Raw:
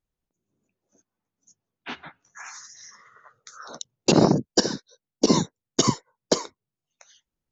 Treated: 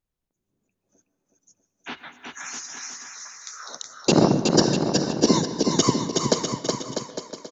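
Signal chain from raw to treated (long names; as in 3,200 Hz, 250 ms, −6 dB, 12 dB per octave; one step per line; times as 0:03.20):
0:01.97–0:03.79: spectral tilt +3 dB per octave
bouncing-ball delay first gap 370 ms, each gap 0.75×, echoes 5
convolution reverb RT60 0.85 s, pre-delay 113 ms, DRR 12.5 dB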